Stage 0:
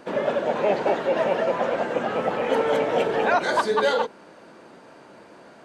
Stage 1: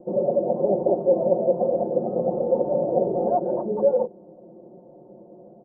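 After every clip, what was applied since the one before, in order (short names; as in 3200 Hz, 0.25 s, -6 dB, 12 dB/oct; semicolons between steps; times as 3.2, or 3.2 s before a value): steep low-pass 670 Hz 36 dB/oct; comb 5.6 ms, depth 95%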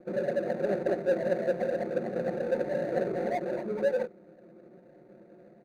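median filter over 41 samples; gain -6 dB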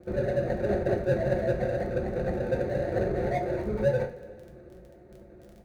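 octaver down 2 oct, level +1 dB; crackle 15/s -43 dBFS; two-slope reverb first 0.33 s, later 2.3 s, from -18 dB, DRR 2.5 dB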